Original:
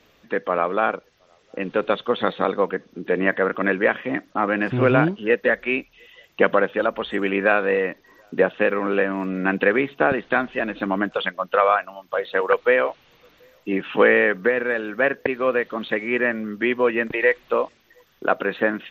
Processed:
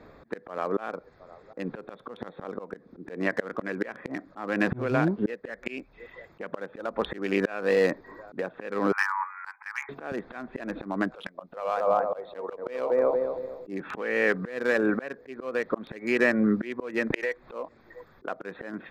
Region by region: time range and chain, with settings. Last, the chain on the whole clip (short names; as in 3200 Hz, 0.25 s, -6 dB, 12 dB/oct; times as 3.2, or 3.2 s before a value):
8.92–9.89 brick-wall FIR band-pass 800–2500 Hz + air absorption 390 m
11.29–13.7 bell 1600 Hz -9.5 dB 0.83 oct + tape echo 0.231 s, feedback 41%, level -6 dB, low-pass 1000 Hz
whole clip: Wiener smoothing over 15 samples; compressor 12:1, threshold -25 dBFS; auto swell 0.364 s; gain +9 dB